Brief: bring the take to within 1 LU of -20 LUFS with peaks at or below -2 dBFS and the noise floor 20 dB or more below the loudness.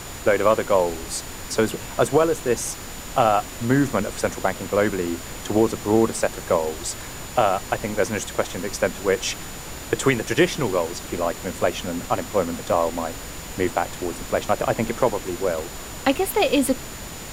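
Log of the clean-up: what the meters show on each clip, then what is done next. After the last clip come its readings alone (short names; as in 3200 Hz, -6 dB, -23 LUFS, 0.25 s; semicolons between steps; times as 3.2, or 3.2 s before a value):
steady tone 7000 Hz; tone level -42 dBFS; noise floor -36 dBFS; noise floor target -43 dBFS; loudness -23.0 LUFS; peak -3.5 dBFS; loudness target -20.0 LUFS
-> notch 7000 Hz, Q 30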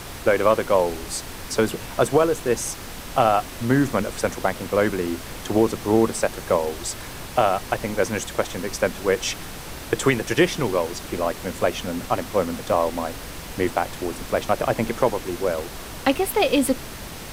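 steady tone none; noise floor -36 dBFS; noise floor target -43 dBFS
-> noise print and reduce 7 dB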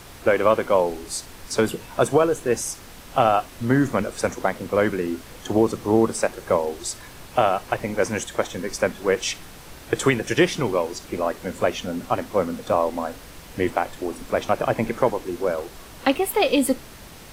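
noise floor -43 dBFS; noise floor target -44 dBFS
-> noise print and reduce 6 dB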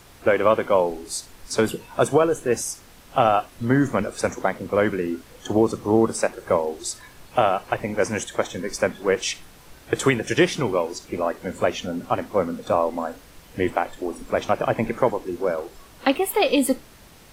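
noise floor -48 dBFS; loudness -23.5 LUFS; peak -4.0 dBFS; loudness target -20.0 LUFS
-> gain +3.5 dB; limiter -2 dBFS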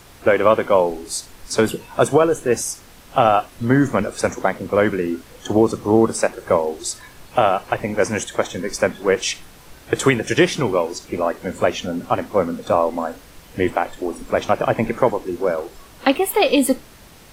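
loudness -20.0 LUFS; peak -2.0 dBFS; noise floor -45 dBFS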